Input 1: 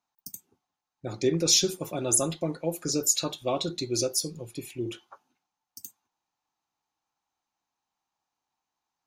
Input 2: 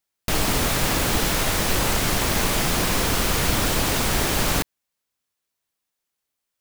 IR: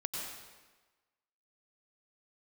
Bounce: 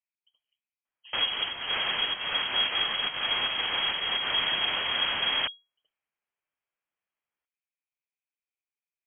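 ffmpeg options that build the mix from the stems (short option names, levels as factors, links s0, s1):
-filter_complex "[0:a]aeval=exprs='val(0)*sin(2*PI*67*n/s)':c=same,volume=0.266,asplit=2[s0][s1];[1:a]equalizer=f=220:w=0.32:g=-7.5,adelay=850,volume=0.75[s2];[s1]apad=whole_len=328735[s3];[s2][s3]sidechaincompress=threshold=0.00891:ratio=10:attack=16:release=124[s4];[s0][s4]amix=inputs=2:normalize=0,lowpass=f=2800:t=q:w=0.5098,lowpass=f=2800:t=q:w=0.6013,lowpass=f=2800:t=q:w=0.9,lowpass=f=2800:t=q:w=2.563,afreqshift=-3300"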